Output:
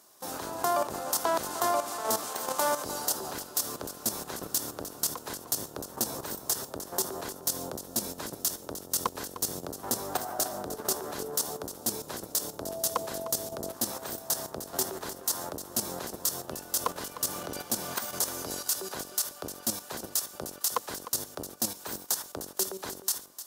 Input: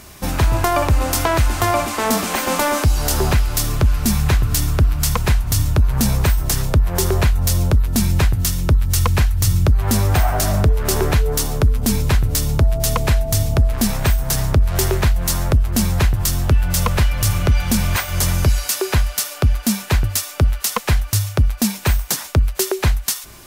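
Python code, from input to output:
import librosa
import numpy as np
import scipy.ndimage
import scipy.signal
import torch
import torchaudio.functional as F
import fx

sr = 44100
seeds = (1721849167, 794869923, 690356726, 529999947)

p1 = fx.octave_divider(x, sr, octaves=1, level_db=3.0)
p2 = scipy.signal.sosfilt(scipy.signal.butter(2, 520.0, 'highpass', fs=sr, output='sos'), p1)
p3 = fx.peak_eq(p2, sr, hz=2300.0, db=-14.0, octaves=0.95)
p4 = fx.level_steps(p3, sr, step_db=11)
p5 = p4 + fx.echo_single(p4, sr, ms=304, db=-13.0, dry=0)
y = p5 * librosa.db_to_amplitude(-4.0)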